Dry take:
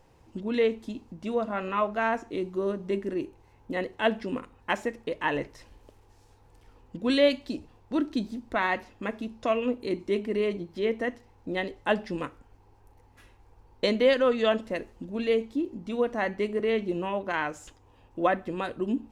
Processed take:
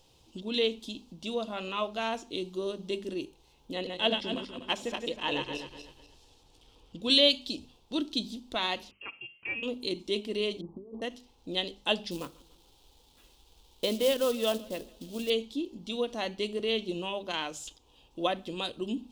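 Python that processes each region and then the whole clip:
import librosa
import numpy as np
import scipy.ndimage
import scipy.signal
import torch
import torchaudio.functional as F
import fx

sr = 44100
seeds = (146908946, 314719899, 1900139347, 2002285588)

y = fx.chain(x, sr, fx.reverse_delay_fb(ms=123, feedback_pct=52, wet_db=-4.0),
    fx.high_shelf(hz=6200.0, db=-8.5), at=(3.73, 7.02))
y = fx.chain(y, sr, fx.highpass(hz=1400.0, slope=6),
    fx.freq_invert(carrier_hz=3000), at=(8.91, 9.63))
y = fx.chain(y, sr, fx.cheby_ripple(hz=1200.0, ripple_db=3),
    fx.over_compress(threshold_db=-39.0, ratio=-1.0), at=(10.61, 11.02))
y = fx.chain(y, sr, fx.lowpass(hz=1800.0, slope=12),
    fx.quant_companded(bits=6),
    fx.echo_warbled(ms=145, feedback_pct=52, rate_hz=2.8, cents=58, wet_db=-23), at=(12.11, 15.3))
y = fx.high_shelf_res(y, sr, hz=2500.0, db=10.0, q=3.0)
y = fx.hum_notches(y, sr, base_hz=50, count=5)
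y = fx.end_taper(y, sr, db_per_s=410.0)
y = y * 10.0 ** (-4.5 / 20.0)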